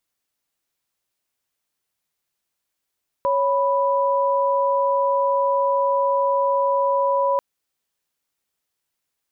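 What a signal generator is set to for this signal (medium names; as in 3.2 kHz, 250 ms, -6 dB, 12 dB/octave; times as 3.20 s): chord C#5/B5 sine, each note -19.5 dBFS 4.14 s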